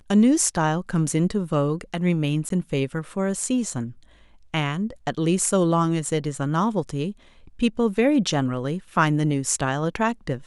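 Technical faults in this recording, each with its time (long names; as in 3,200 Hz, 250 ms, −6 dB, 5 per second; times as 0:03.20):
0:02.49–0:02.50: drop-out 13 ms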